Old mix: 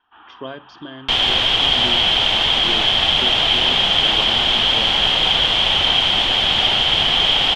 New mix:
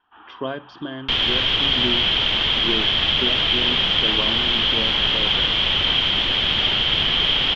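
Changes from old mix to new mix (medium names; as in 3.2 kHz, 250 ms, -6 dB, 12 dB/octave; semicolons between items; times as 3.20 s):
speech +4.5 dB; second sound: add peaking EQ 760 Hz -10 dB 0.73 oct; master: add distance through air 150 m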